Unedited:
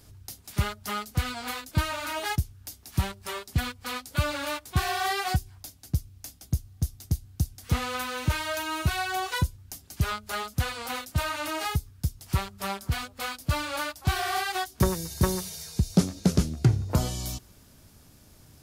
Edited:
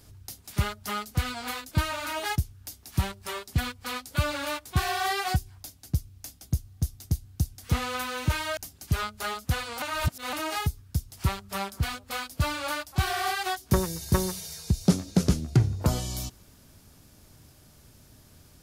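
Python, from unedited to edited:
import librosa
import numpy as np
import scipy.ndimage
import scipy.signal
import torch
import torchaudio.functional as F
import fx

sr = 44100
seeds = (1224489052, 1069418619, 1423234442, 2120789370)

y = fx.edit(x, sr, fx.cut(start_s=8.57, length_s=1.09),
    fx.reverse_span(start_s=10.91, length_s=0.51), tone=tone)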